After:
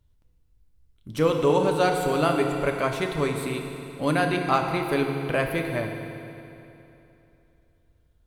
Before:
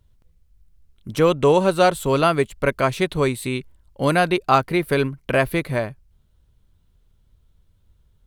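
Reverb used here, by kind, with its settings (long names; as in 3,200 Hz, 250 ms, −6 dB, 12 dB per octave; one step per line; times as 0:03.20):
feedback delay network reverb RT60 3 s, high-frequency decay 0.85×, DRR 2.5 dB
level −6.5 dB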